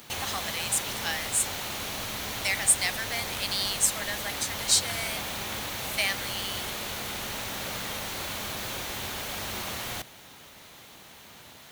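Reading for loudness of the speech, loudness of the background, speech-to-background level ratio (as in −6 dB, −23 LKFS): −28.0 LKFS, −32.5 LKFS, 4.5 dB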